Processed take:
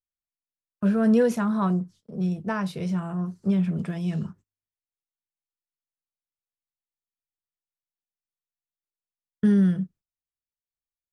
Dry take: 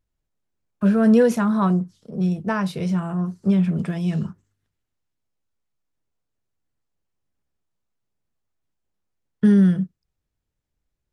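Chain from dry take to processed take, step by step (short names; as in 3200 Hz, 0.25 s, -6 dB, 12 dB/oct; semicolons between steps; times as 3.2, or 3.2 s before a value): gate -44 dBFS, range -22 dB; gain -4.5 dB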